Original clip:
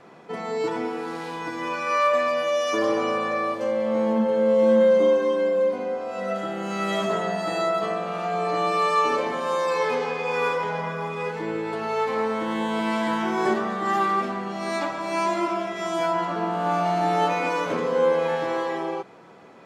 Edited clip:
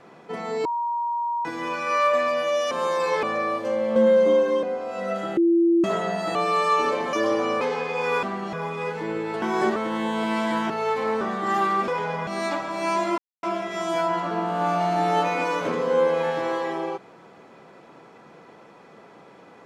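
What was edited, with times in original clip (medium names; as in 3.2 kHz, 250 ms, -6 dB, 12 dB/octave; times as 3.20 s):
0.65–1.45 s: bleep 946 Hz -23 dBFS
2.71–3.19 s: swap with 9.39–9.91 s
3.92–4.70 s: delete
5.37–5.83 s: delete
6.57–7.04 s: bleep 338 Hz -15 dBFS
7.55–8.61 s: delete
10.53–10.92 s: swap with 14.27–14.57 s
11.81–12.32 s: swap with 13.26–13.60 s
15.48 s: insert silence 0.25 s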